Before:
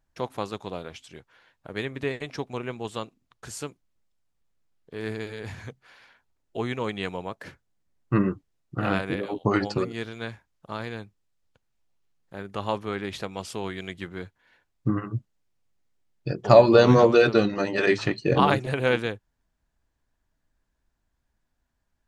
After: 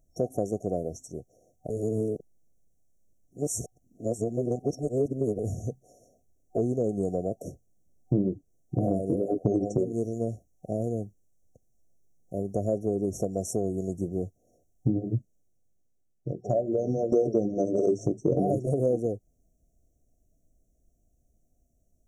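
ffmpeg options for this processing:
-filter_complex "[0:a]asplit=4[a][b][c][d];[a]atrim=end=1.702[e];[b]atrim=start=1.698:end=5.392,asetpts=PTS-STARTPTS,areverse[f];[c]atrim=start=5.388:end=17.12,asetpts=PTS-STARTPTS,afade=t=out:st=9.672:d=2.06:c=qua:silence=0.141254[g];[d]atrim=start=17.12,asetpts=PTS-STARTPTS,afade=t=in:d=0.004:c=hsin:silence=0.141254[h];[e][f]acrossfade=d=0.004:c1=hsin:c2=hsin[i];[g][h]concat=n=2:v=0:a=1[j];[i][j]acrossfade=d=0.004:c1=hsin:c2=hsin,afftfilt=real='re*(1-between(b*sr/4096,750,5500))':imag='im*(1-between(b*sr/4096,750,5500))':win_size=4096:overlap=0.75,adynamicequalizer=threshold=0.0355:dfrequency=370:dqfactor=0.86:tfrequency=370:tqfactor=0.86:attack=5:release=100:ratio=0.375:range=1.5:mode=boostabove:tftype=bell,acompressor=threshold=-31dB:ratio=4,volume=7.5dB"

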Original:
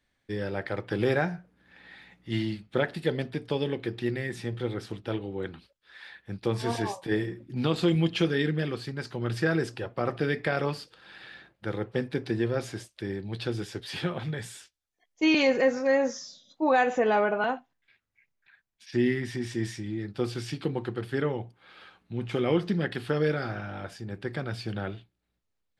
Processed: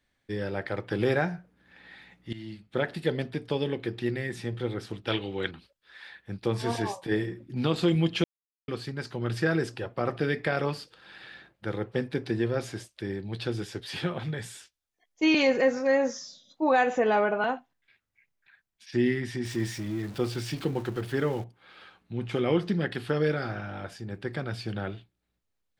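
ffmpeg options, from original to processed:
-filter_complex "[0:a]asettb=1/sr,asplit=3[a][b][c];[a]atrim=end=5.074[d];[b]atrim=start=5.07:end=5.51,asetpts=PTS-STARTPTS,afade=t=in:d=0.004:c=qsin,afade=t=out:st=0.436:d=0.004:c=qsin,equalizer=f=3.2k:w=0.51:g=14[e];[c]atrim=start=5.506[f];[d][e]acrossfade=d=0.004:c1=hsin:c2=qsin[g];[g][f]acrossfade=d=0.004:c1=qsin:c2=hsin,asettb=1/sr,asplit=3[h][i][j];[h]atrim=end=19.454[k];[i]atrim=start=19.45:end=21.44,asetpts=PTS-STARTPTS,afade=t=in:d=0.004:c=qsin,afade=t=out:st=1.986:d=0.004:c=qsin,aeval=exprs='val(0)+0.5*0.00891*sgn(val(0))':c=same[l];[j]atrim=start=21.436[m];[k][l]acrossfade=d=0.004:c1=hsin:c2=qsin[n];[n][m]acrossfade=d=0.004:c1=qsin:c2=hsin,asplit=4[o][p][q][r];[o]atrim=end=2.33,asetpts=PTS-STARTPTS,afade=t=out:st=2.326:d=0.004:c=hsin:silence=0.125893[s];[p]atrim=start=2.33:end=8.24,asetpts=PTS-STARTPTS,afade=t=in:d=0.6:silence=0.125893,afade=t=out:st=5.906:d=0.004:c=hsin[t];[q]atrim=start=8.24:end=8.68,asetpts=PTS-STARTPTS,volume=0[u];[r]atrim=start=8.68,asetpts=PTS-STARTPTS,afade=t=in:d=0.004:c=hsin[v];[s][t][u][v]concat=n=4:v=0:a=1"

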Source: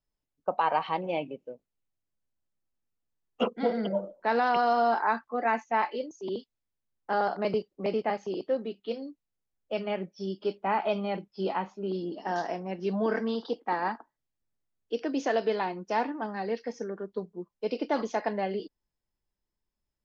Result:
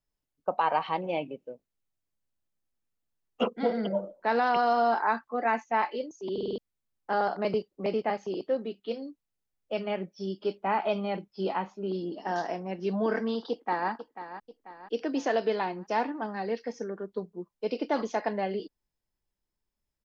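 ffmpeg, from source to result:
-filter_complex "[0:a]asplit=2[a][b];[b]afade=t=in:st=13.5:d=0.01,afade=t=out:st=13.9:d=0.01,aecho=0:1:490|980|1470|1960|2450:0.251189|0.125594|0.0627972|0.0313986|0.0156993[c];[a][c]amix=inputs=2:normalize=0,asplit=6[d][e][f][g][h][i];[d]atrim=end=6.382[j];[e]atrim=start=6.328:end=6.382[k];[f]atrim=start=6.328:end=6.382[l];[g]atrim=start=6.328:end=6.382[m];[h]atrim=start=6.328:end=6.382[n];[i]atrim=start=6.578[o];[j][k]acrossfade=d=0.004:c1=hsin:c2=hsin[p];[p][l]acrossfade=d=0.004:c1=hsin:c2=hsin[q];[q][m]acrossfade=d=0.004:c1=hsin:c2=hsin[r];[r][n]acrossfade=d=0.004:c1=hsin:c2=hsin[s];[s][o]acrossfade=d=0.004:c1=hsin:c2=hsin"

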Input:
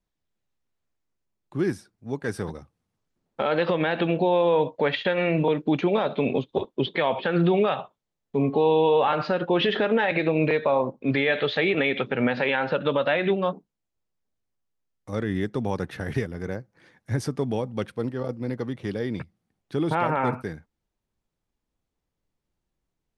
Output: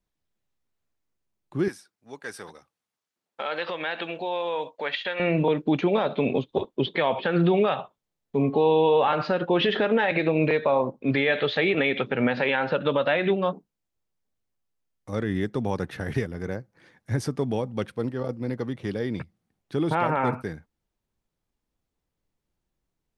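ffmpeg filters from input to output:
-filter_complex "[0:a]asettb=1/sr,asplit=3[a][b][c];[a]atrim=end=1.684[d];[b]atrim=start=1.68:end=5.2,asetpts=PTS-STARTPTS,afade=t=in:d=0.004:c=qsin,afade=t=out:st=3.516:d=0.004:c=qsin,highpass=f=1.3k:p=1[e];[c]atrim=start=5.196[f];[d][e]acrossfade=d=0.004:c1=hsin:c2=qsin[g];[g][f]acrossfade=d=0.004:c1=qsin:c2=hsin"

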